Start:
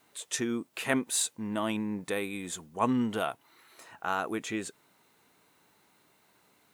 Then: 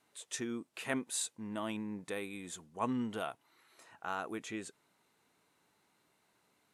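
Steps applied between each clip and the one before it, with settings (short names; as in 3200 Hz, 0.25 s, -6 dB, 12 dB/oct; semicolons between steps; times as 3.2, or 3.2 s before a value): LPF 12000 Hz 24 dB/oct; gain -7.5 dB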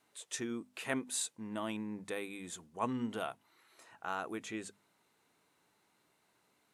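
notches 50/100/150/200/250 Hz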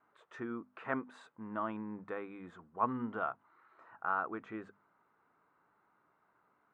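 synth low-pass 1300 Hz, resonance Q 3.1; gain -2 dB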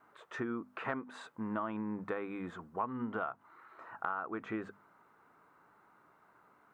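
compressor 8:1, threshold -41 dBFS, peak gain reduction 15 dB; gain +8 dB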